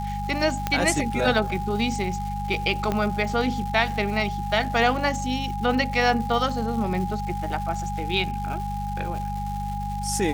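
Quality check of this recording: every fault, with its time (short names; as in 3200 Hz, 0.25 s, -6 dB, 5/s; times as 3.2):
crackle 430/s -34 dBFS
hum 50 Hz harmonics 4 -31 dBFS
tone 820 Hz -30 dBFS
0.67 pop -9 dBFS
2.92 pop -12 dBFS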